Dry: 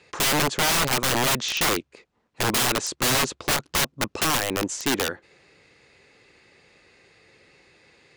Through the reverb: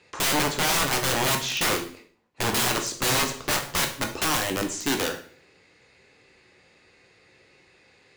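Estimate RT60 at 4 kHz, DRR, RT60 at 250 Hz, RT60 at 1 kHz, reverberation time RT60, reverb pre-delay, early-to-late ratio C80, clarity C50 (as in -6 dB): 0.45 s, 3.0 dB, 0.60 s, 0.45 s, 0.50 s, 10 ms, 13.5 dB, 9.5 dB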